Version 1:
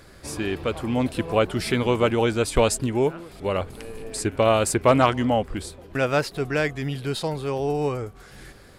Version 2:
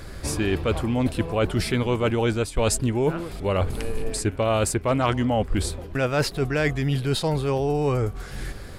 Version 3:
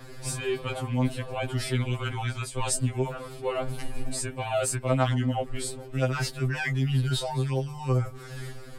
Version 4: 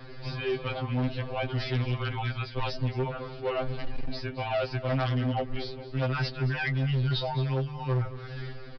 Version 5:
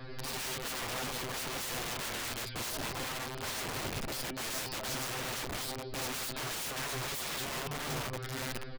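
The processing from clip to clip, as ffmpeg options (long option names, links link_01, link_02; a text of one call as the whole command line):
ffmpeg -i in.wav -af "lowshelf=frequency=100:gain=10.5,areverse,acompressor=threshold=-26dB:ratio=6,areverse,volume=6.5dB" out.wav
ffmpeg -i in.wav -filter_complex "[0:a]adynamicequalizer=threshold=0.00355:dfrequency=8400:dqfactor=6.2:tfrequency=8400:tqfactor=6.2:attack=5:release=100:ratio=0.375:range=3.5:mode=boostabove:tftype=bell,acrossover=split=150|470|4400[link_01][link_02][link_03][link_04];[link_02]alimiter=level_in=3dB:limit=-24dB:level=0:latency=1:release=13,volume=-3dB[link_05];[link_01][link_05][link_03][link_04]amix=inputs=4:normalize=0,afftfilt=real='re*2.45*eq(mod(b,6),0)':imag='im*2.45*eq(mod(b,6),0)':win_size=2048:overlap=0.75,volume=-2dB" out.wav
ffmpeg -i in.wav -af "aresample=11025,asoftclip=type=hard:threshold=-23.5dB,aresample=44100,aecho=1:1:222:0.158" out.wav
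ffmpeg -i in.wav -af "aeval=exprs='(mod(44.7*val(0)+1,2)-1)/44.7':channel_layout=same" out.wav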